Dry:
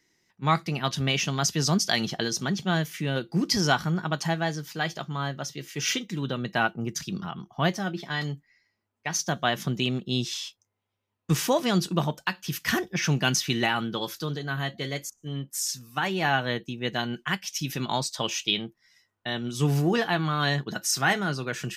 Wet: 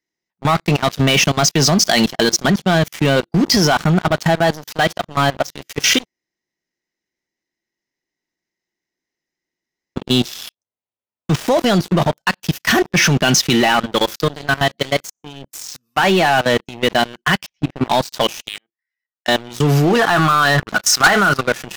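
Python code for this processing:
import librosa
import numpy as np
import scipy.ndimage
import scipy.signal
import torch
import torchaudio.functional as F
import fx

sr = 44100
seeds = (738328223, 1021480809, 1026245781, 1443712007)

y = fx.resample_linear(x, sr, factor=3, at=(10.46, 11.47))
y = fx.highpass(y, sr, hz=97.0, slope=12, at=(14.75, 16.63))
y = fx.lowpass(y, sr, hz=1500.0, slope=12, at=(17.45, 17.88), fade=0.02)
y = fx.bandpass_q(y, sr, hz=1800.0, q=2.5, at=(18.48, 19.28))
y = fx.peak_eq(y, sr, hz=1300.0, db=11.0, octaves=0.77, at=(19.99, 21.41))
y = fx.edit(y, sr, fx.room_tone_fill(start_s=6.05, length_s=3.91), tone=tone)
y = fx.graphic_eq_15(y, sr, hz=(100, 630, 10000), db=(-9, 5, -7))
y = fx.level_steps(y, sr, step_db=15)
y = fx.leveller(y, sr, passes=5)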